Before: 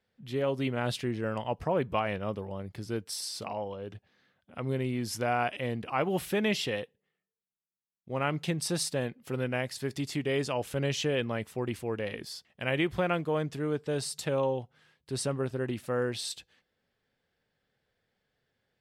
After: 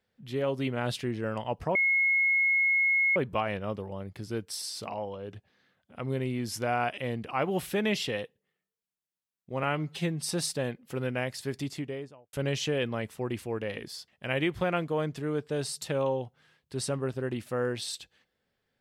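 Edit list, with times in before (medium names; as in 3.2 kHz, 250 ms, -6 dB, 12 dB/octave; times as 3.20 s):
1.75 s: add tone 2.17 kHz -21.5 dBFS 1.41 s
8.22–8.66 s: stretch 1.5×
9.89–10.70 s: studio fade out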